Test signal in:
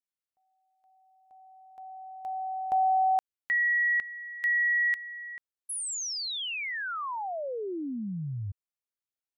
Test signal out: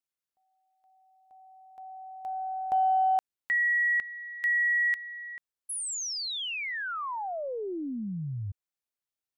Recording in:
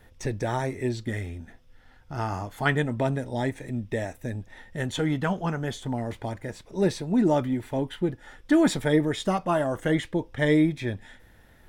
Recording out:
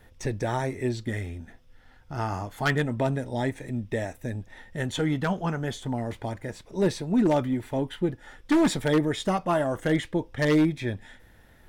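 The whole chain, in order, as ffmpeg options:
ffmpeg -i in.wav -af "aeval=exprs='0.178*(abs(mod(val(0)/0.178+3,4)-2)-1)':channel_layout=same,aeval=exprs='0.188*(cos(1*acos(clip(val(0)/0.188,-1,1)))-cos(1*PI/2))+0.0075*(cos(2*acos(clip(val(0)/0.188,-1,1)))-cos(2*PI/2))+0.00119*(cos(8*acos(clip(val(0)/0.188,-1,1)))-cos(8*PI/2))':channel_layout=same" out.wav

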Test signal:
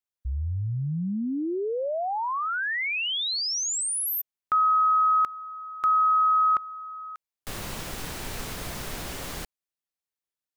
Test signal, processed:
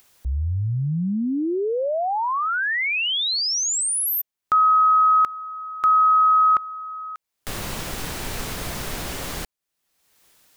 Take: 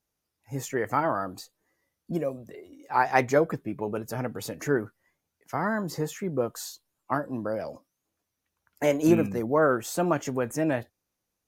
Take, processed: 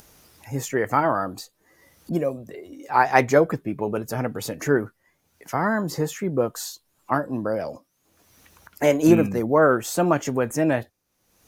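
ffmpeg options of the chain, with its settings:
ffmpeg -i in.wav -af "acompressor=mode=upward:threshold=-37dB:ratio=2.5:attack=4.3:release=464:knee=2.83:detection=peak,volume=5dB" out.wav

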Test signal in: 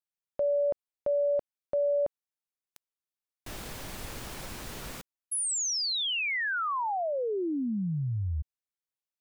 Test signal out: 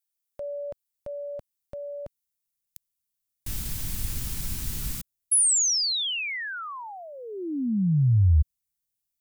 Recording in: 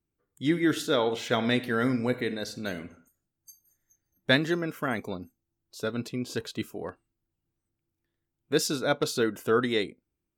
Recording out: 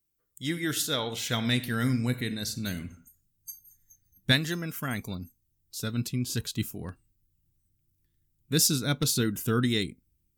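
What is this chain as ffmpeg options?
ffmpeg -i in.wav -af "crystalizer=i=5:c=0,asubboost=boost=12:cutoff=170,volume=-6.5dB" out.wav

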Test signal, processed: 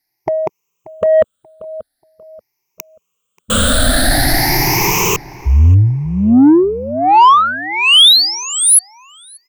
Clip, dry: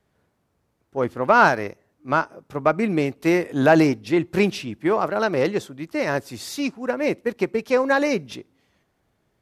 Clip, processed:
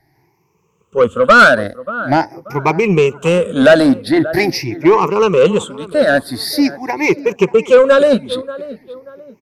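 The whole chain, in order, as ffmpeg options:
ffmpeg -i in.wav -filter_complex "[0:a]afftfilt=real='re*pow(10,23/40*sin(2*PI*(0.76*log(max(b,1)*sr/1024/100)/log(2)-(0.45)*(pts-256)/sr)))':imag='im*pow(10,23/40*sin(2*PI*(0.76*log(max(b,1)*sr/1024/100)/log(2)-(0.45)*(pts-256)/sr)))':win_size=1024:overlap=0.75,asplit=2[link_01][link_02];[link_02]adelay=584,lowpass=frequency=1900:poles=1,volume=-18.5dB,asplit=2[link_03][link_04];[link_04]adelay=584,lowpass=frequency=1900:poles=1,volume=0.33,asplit=2[link_05][link_06];[link_06]adelay=584,lowpass=frequency=1900:poles=1,volume=0.33[link_07];[link_03][link_05][link_07]amix=inputs=3:normalize=0[link_08];[link_01][link_08]amix=inputs=2:normalize=0,acontrast=62,volume=-1dB" out.wav

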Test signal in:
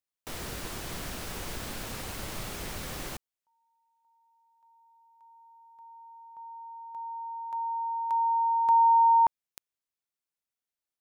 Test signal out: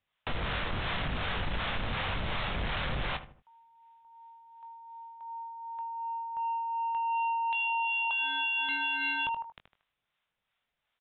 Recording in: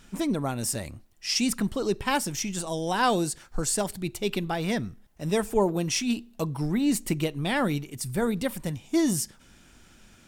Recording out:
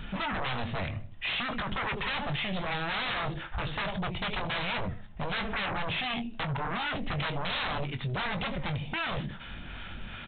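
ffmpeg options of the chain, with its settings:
ffmpeg -i in.wav -filter_complex "[0:a]asplit=2[link_01][link_02];[link_02]adelay=77,lowpass=frequency=2500:poles=1,volume=-16dB,asplit=2[link_03][link_04];[link_04]adelay=77,lowpass=frequency=2500:poles=1,volume=0.34,asplit=2[link_05][link_06];[link_06]adelay=77,lowpass=frequency=2500:poles=1,volume=0.34[link_07];[link_03][link_05][link_07]amix=inputs=3:normalize=0[link_08];[link_01][link_08]amix=inputs=2:normalize=0,asoftclip=type=hard:threshold=-24dB,acrossover=split=560[link_09][link_10];[link_09]aeval=exprs='val(0)*(1-0.5/2+0.5/2*cos(2*PI*2.7*n/s))':channel_layout=same[link_11];[link_10]aeval=exprs='val(0)*(1-0.5/2-0.5/2*cos(2*PI*2.7*n/s))':channel_layout=same[link_12];[link_11][link_12]amix=inputs=2:normalize=0,aresample=8000,aeval=exprs='0.119*sin(PI/2*7.08*val(0)/0.119)':channel_layout=same,aresample=44100,equalizer=frequency=330:width_type=o:width=1.2:gain=-9,asplit=2[link_13][link_14];[link_14]adelay=21,volume=-10dB[link_15];[link_13][link_15]amix=inputs=2:normalize=0,acompressor=threshold=-29dB:ratio=2:attack=2.5:release=768:knee=6:detection=peak,volume=-3dB" out.wav

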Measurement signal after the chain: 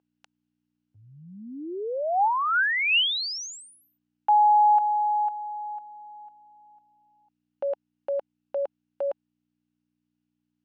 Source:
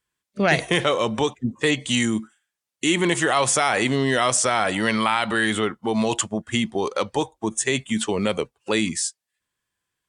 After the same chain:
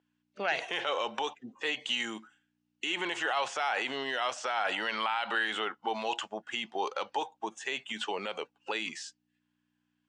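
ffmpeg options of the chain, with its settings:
ffmpeg -i in.wav -filter_complex "[0:a]aeval=exprs='val(0)+0.00282*(sin(2*PI*60*n/s)+sin(2*PI*2*60*n/s)/2+sin(2*PI*3*60*n/s)/3+sin(2*PI*4*60*n/s)/4+sin(2*PI*5*60*n/s)/5)':channel_layout=same,alimiter=limit=-15dB:level=0:latency=1:release=36,acrossover=split=4000[link_01][link_02];[link_02]acompressor=threshold=-30dB:ratio=4:attack=1:release=60[link_03];[link_01][link_03]amix=inputs=2:normalize=0,highpass=470,equalizer=frequency=820:width_type=q:width=4:gain=8,equalizer=frequency=1500:width_type=q:width=4:gain=6,equalizer=frequency=2800:width_type=q:width=4:gain=8,lowpass=frequency=6500:width=0.5412,lowpass=frequency=6500:width=1.3066,volume=-7dB" out.wav

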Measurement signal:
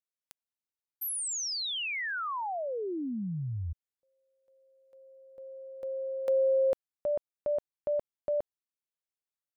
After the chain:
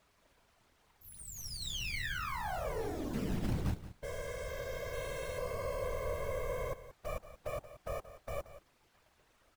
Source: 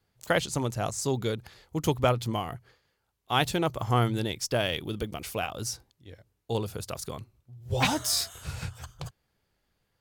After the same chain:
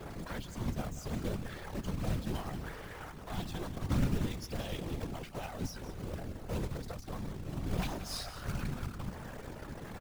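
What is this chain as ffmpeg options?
ffmpeg -i in.wav -filter_complex "[0:a]aeval=exprs='val(0)+0.5*0.0224*sgn(val(0))':channel_layout=same,acrossover=split=220|1700|3100[link_01][link_02][link_03][link_04];[link_02]crystalizer=i=3:c=0[link_05];[link_01][link_05][link_03][link_04]amix=inputs=4:normalize=0,highpass=frequency=62:poles=1,aemphasis=mode=reproduction:type=75fm,afftdn=noise_reduction=18:noise_floor=-41,highshelf=frequency=2000:gain=-4.5,acrossover=split=130|4800[link_06][link_07][link_08];[link_07]acompressor=threshold=-35dB:ratio=8:attack=0.11:release=363:knee=2.83:detection=peak[link_09];[link_06][link_09][link_08]amix=inputs=3:normalize=0,bandreject=frequency=50:width_type=h:width=6,bandreject=frequency=100:width_type=h:width=6,bandreject=frequency=150:width_type=h:width=6,aeval=exprs='max(val(0),0)':channel_layout=same,acrusher=bits=3:mode=log:mix=0:aa=0.000001,afftfilt=real='hypot(re,im)*cos(2*PI*random(0))':imag='hypot(re,im)*sin(2*PI*random(1))':win_size=512:overlap=0.75,aecho=1:1:178:0.2,volume=9dB" out.wav

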